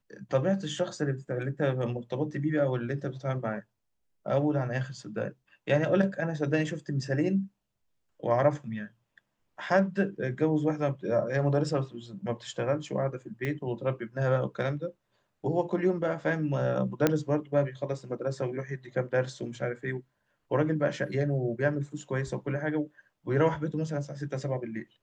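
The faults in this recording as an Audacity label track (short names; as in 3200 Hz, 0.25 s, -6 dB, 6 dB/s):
13.450000	13.450000	pop -20 dBFS
17.070000	17.070000	pop -9 dBFS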